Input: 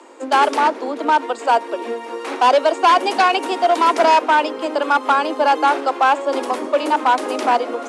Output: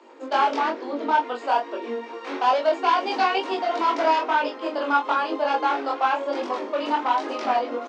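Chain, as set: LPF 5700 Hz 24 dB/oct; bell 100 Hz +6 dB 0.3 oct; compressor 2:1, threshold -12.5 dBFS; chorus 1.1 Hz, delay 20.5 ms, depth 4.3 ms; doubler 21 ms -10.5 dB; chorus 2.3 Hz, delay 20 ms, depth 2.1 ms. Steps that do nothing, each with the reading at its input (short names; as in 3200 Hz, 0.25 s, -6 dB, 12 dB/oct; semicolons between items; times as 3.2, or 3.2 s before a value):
bell 100 Hz: input band starts at 200 Hz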